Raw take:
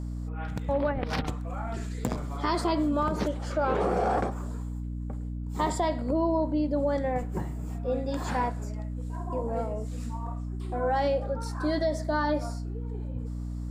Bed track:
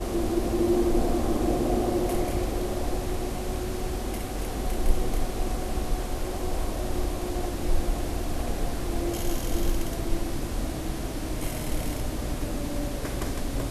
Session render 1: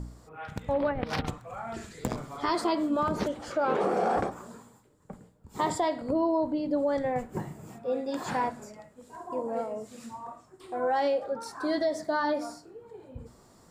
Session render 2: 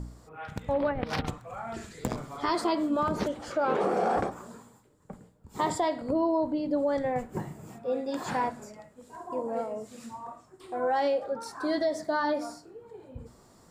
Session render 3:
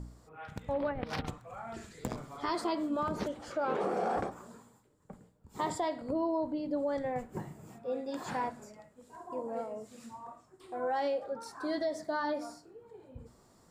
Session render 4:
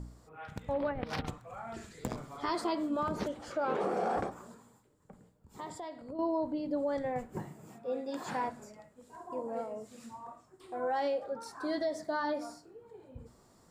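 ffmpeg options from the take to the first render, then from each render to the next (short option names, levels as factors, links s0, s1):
-af "bandreject=f=60:t=h:w=4,bandreject=f=120:t=h:w=4,bandreject=f=180:t=h:w=4,bandreject=f=240:t=h:w=4,bandreject=f=300:t=h:w=4"
-af anull
-af "volume=0.531"
-filter_complex "[0:a]asettb=1/sr,asplit=3[s0][s1][s2];[s0]atrim=end=4.544[s3];[s1]atrim=start=4.54:end=6.19,asetpts=PTS-STARTPTS,afade=t=in:d=0.004:c=qsin,afade=t=out:st=1.646:d=0.004:c=qsin,acompressor=threshold=0.00158:ratio=1.5:attack=3.2:release=140:knee=1:detection=peak[s4];[s2]atrim=start=6.186[s5];[s3][s4]acrossfade=d=0.004:c1=hsin:c2=qsin[s6];[s6][s5]acrossfade=d=0.004:c1=qsin:c2=hsin,asettb=1/sr,asplit=3[s7][s8][s9];[s7]atrim=end=7.464[s10];[s8]atrim=start=7.46:end=8.48,asetpts=PTS-STARTPTS,afade=t=in:d=0.004:c=qsin,afade=t=out:st=1.016:d=0.004:c=qsin,highpass=130[s11];[s9]atrim=start=8.476[s12];[s10][s11]acrossfade=d=0.004:c1=hsin:c2=qsin[s13];[s13][s12]acrossfade=d=0.004:c1=qsin:c2=hsin"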